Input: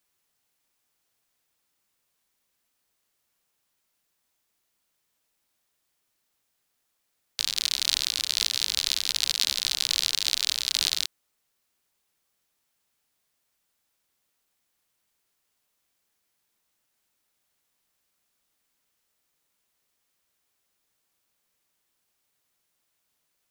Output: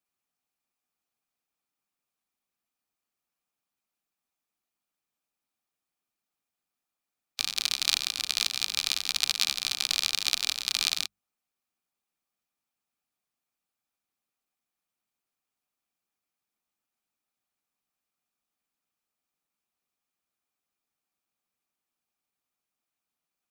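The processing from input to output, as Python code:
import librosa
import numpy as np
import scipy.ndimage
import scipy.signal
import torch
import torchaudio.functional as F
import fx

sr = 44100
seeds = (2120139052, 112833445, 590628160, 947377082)

y = fx.hum_notches(x, sr, base_hz=50, count=4)
y = fx.small_body(y, sr, hz=(220.0, 760.0, 1200.0, 2400.0), ring_ms=20, db=9)
y = fx.hpss(y, sr, part='harmonic', gain_db=-6)
y = fx.upward_expand(y, sr, threshold_db=-48.0, expansion=1.5)
y = F.gain(torch.from_numpy(y), 1.5).numpy()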